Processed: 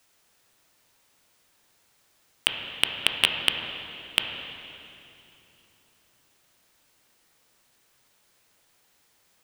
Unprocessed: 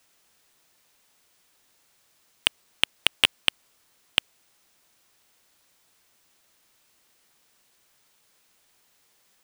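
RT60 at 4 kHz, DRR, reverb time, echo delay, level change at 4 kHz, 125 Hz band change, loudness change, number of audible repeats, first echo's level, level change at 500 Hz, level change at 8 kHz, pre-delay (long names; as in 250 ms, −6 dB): 2.7 s, 3.0 dB, 3.0 s, no echo audible, 0.0 dB, +2.5 dB, −1.5 dB, no echo audible, no echo audible, +1.5 dB, −1.0 dB, 11 ms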